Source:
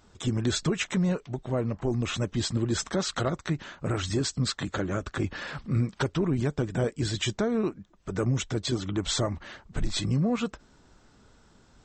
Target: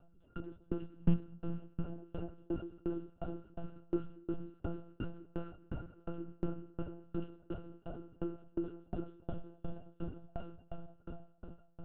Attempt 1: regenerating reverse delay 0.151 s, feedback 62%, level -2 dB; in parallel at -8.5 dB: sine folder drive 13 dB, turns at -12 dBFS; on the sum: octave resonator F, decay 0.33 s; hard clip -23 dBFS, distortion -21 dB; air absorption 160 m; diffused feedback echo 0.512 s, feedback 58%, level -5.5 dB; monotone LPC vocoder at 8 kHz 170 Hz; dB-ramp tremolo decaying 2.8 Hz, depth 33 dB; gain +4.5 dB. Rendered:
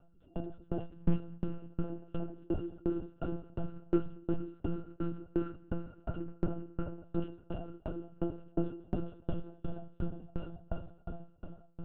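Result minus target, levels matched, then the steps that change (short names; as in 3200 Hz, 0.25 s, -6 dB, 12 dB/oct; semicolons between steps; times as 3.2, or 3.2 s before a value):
sine folder: distortion -21 dB
change: sine folder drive 13 dB, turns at -20 dBFS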